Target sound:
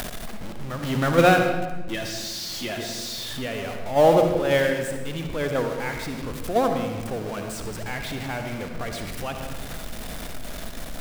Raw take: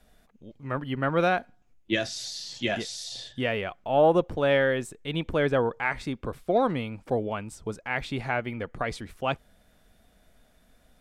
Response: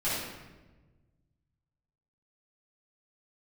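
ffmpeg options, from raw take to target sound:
-filter_complex "[0:a]aeval=exprs='val(0)+0.5*0.0562*sgn(val(0))':c=same,agate=range=-9dB:threshold=-19dB:ratio=16:detection=peak,asettb=1/sr,asplit=3[a][b][c];[a]atrim=end=0.834[d];[b]atrim=start=0.83:end=1.39,asetpts=PTS-STARTPTS,afade=t=in:d=0.004:c=qsin,afade=t=out:st=0.556:d=0.004:c=qsin,acontrast=89[e];[c]atrim=start=1.386[f];[d][e]acrossfade=d=0.004:c1=hsin:c2=qsin[g];[g][f]acrossfade=d=0.004:c1=qsin:c2=hsin,asplit=2[h][i];[1:a]atrim=start_sample=2205,adelay=55[j];[i][j]afir=irnorm=-1:irlink=0,volume=-13.5dB[k];[h][k]amix=inputs=2:normalize=0,acompressor=mode=upward:threshold=-29dB:ratio=2.5,volume=1.5dB"

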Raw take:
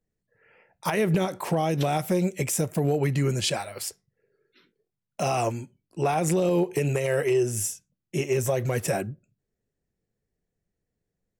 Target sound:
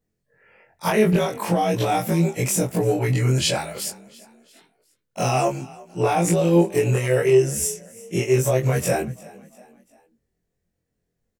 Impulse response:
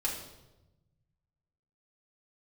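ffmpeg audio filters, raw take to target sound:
-filter_complex "[0:a]afftfilt=real='re':imag='-im':win_size=2048:overlap=0.75,asplit=2[a][b];[b]asplit=3[c][d][e];[c]adelay=346,afreqshift=34,volume=-21.5dB[f];[d]adelay=692,afreqshift=68,volume=-28.4dB[g];[e]adelay=1038,afreqshift=102,volume=-35.4dB[h];[f][g][h]amix=inputs=3:normalize=0[i];[a][i]amix=inputs=2:normalize=0,volume=9dB"

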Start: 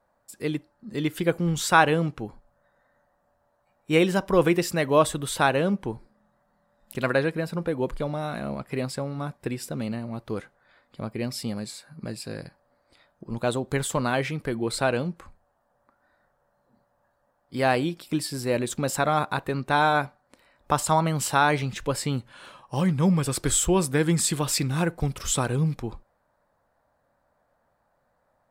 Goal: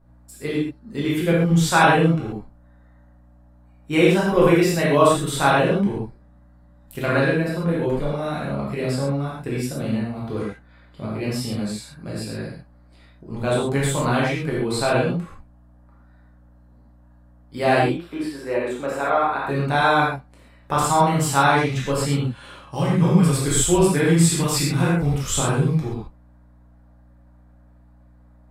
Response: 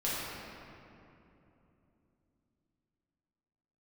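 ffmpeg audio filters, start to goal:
-filter_complex "[0:a]asettb=1/sr,asplit=3[a][b][c];[a]atrim=end=17.834[d];[b]atrim=start=17.83:end=19.47,asetpts=PTS-STARTPTS,afade=t=in:d=0.004:c=qsin,afade=t=out:st=1.636:d=0.004:c=qsin,acrossover=split=300 2600:gain=0.1 1 0.178[e][f][g];[e][f][g]amix=inputs=3:normalize=0[h];[c]atrim=start=19.466[i];[d][h]acrossfade=d=0.004:c1=hsin:c2=qsin[j];[j][i]acrossfade=d=0.004:c1=qsin:c2=hsin,aeval=exprs='val(0)+0.00178*(sin(2*PI*60*n/s)+sin(2*PI*2*60*n/s)/2+sin(2*PI*3*60*n/s)/3+sin(2*PI*4*60*n/s)/4+sin(2*PI*5*60*n/s)/5)':c=same[k];[1:a]atrim=start_sample=2205,atrim=end_sample=4410,asetrate=30429,aresample=44100[l];[k][l]afir=irnorm=-1:irlink=0,volume=-2.5dB"

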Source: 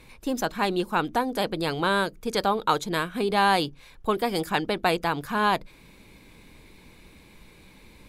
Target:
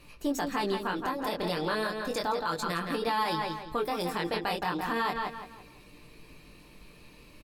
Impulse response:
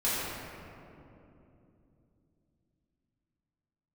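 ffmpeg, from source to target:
-filter_complex "[0:a]aecho=1:1:7.3:0.34,asetrate=48000,aresample=44100,flanger=delay=17:depth=6.5:speed=0.34,asplit=2[a][b];[b]adelay=168,lowpass=f=4.6k:p=1,volume=-8dB,asplit=2[c][d];[d]adelay=168,lowpass=f=4.6k:p=1,volume=0.35,asplit=2[e][f];[f]adelay=168,lowpass=f=4.6k:p=1,volume=0.35,asplit=2[g][h];[h]adelay=168,lowpass=f=4.6k:p=1,volume=0.35[i];[c][e][g][i]amix=inputs=4:normalize=0[j];[a][j]amix=inputs=2:normalize=0,alimiter=limit=-20.5dB:level=0:latency=1:release=70"

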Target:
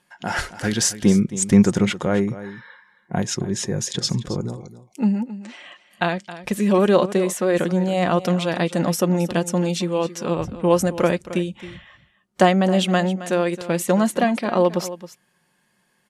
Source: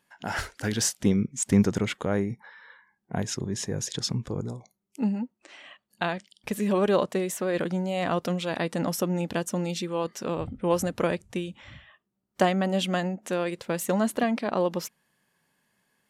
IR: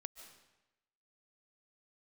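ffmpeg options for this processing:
-filter_complex "[0:a]lowpass=f=12k:w=0.5412,lowpass=f=12k:w=1.3066,aecho=1:1:5.6:0.33,asplit=2[a][b];[b]aecho=0:1:269:0.188[c];[a][c]amix=inputs=2:normalize=0,volume=5.5dB"

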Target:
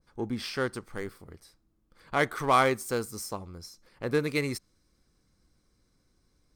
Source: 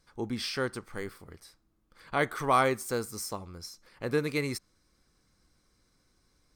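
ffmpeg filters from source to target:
-filter_complex "[0:a]asplit=2[a][b];[b]adynamicsmooth=sensitivity=7:basefreq=840,volume=-2dB[c];[a][c]amix=inputs=2:normalize=0,adynamicequalizer=threshold=0.0178:dfrequency=2100:dqfactor=0.7:tfrequency=2100:tqfactor=0.7:attack=5:release=100:ratio=0.375:range=2:mode=boostabove:tftype=highshelf,volume=-3.5dB"

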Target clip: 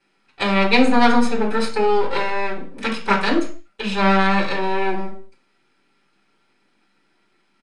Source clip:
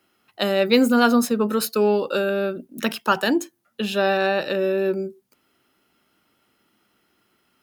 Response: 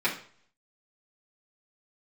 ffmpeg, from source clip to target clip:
-filter_complex "[0:a]aeval=exprs='max(val(0),0)':c=same,acrusher=bits=11:mix=0:aa=0.000001[a];[1:a]atrim=start_sample=2205,afade=t=out:st=0.29:d=0.01,atrim=end_sample=13230[b];[a][b]afir=irnorm=-1:irlink=0,aresample=22050,aresample=44100,volume=-4.5dB"

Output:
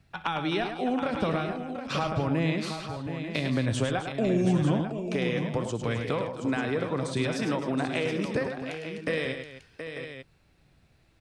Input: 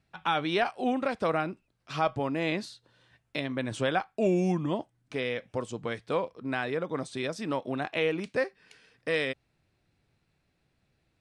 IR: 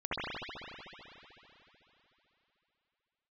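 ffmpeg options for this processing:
-filter_complex "[0:a]acrossover=split=190[a][b];[a]aphaser=in_gain=1:out_gain=1:delay=3.9:decay=0.5:speed=0.84:type=triangular[c];[b]acompressor=threshold=-35dB:ratio=6[d];[c][d]amix=inputs=2:normalize=0,aecho=1:1:62|104|261|724|798|894:0.133|0.422|0.211|0.355|0.106|0.299,volume=7dB"

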